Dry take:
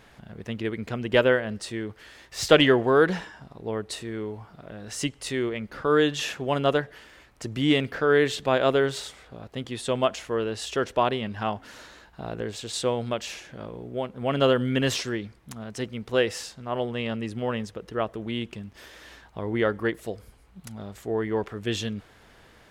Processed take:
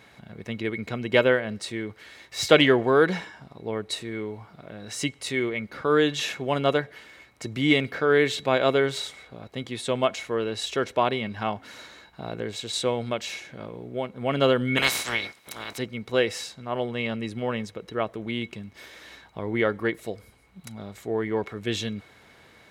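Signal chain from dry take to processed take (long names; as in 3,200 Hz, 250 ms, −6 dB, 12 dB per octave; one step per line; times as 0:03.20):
0:14.76–0:15.77: ceiling on every frequency bin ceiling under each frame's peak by 29 dB
high-pass filter 85 Hz
hollow resonant body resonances 2,200/3,900 Hz, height 17 dB, ringing for 85 ms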